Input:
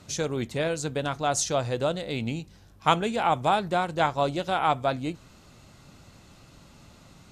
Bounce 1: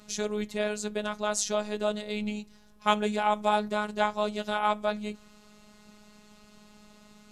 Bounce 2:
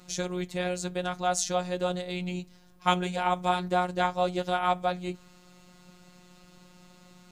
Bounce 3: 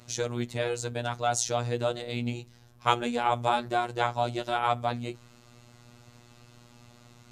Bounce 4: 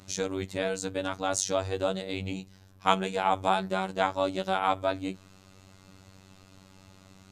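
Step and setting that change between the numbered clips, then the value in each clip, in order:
robot voice, frequency: 210 Hz, 180 Hz, 120 Hz, 95 Hz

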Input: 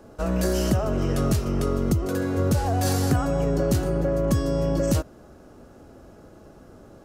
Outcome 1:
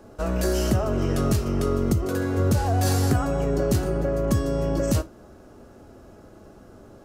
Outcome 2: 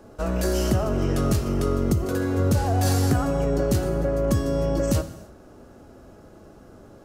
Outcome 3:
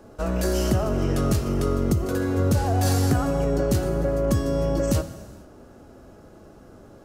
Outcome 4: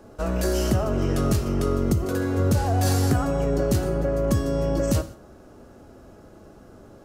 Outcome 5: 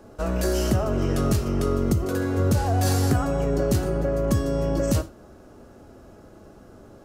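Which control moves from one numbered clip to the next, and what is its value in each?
gated-style reverb, gate: 90 ms, 350 ms, 510 ms, 210 ms, 140 ms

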